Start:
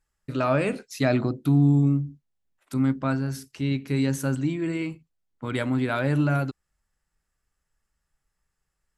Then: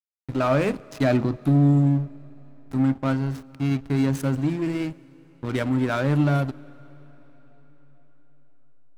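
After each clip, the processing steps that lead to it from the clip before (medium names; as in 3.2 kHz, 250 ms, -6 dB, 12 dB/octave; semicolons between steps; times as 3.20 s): single-diode clipper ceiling -11 dBFS; hysteresis with a dead band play -29.5 dBFS; on a send at -22 dB: reverberation RT60 4.9 s, pre-delay 92 ms; on the sum: trim +3.5 dB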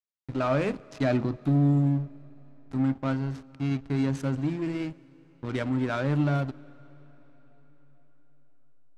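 low-pass 7.3 kHz 12 dB/octave; trim -4.5 dB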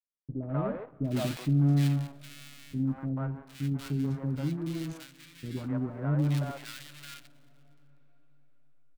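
dead-time distortion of 0.21 ms; peaking EQ 160 Hz +6 dB 0.43 oct; three bands offset in time lows, mids, highs 140/760 ms, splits 470/1600 Hz; trim -4.5 dB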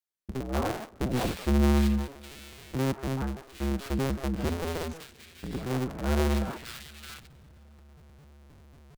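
cycle switcher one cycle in 2, inverted; trim +1.5 dB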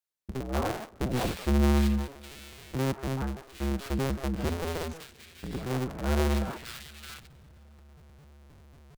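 peaking EQ 260 Hz -2 dB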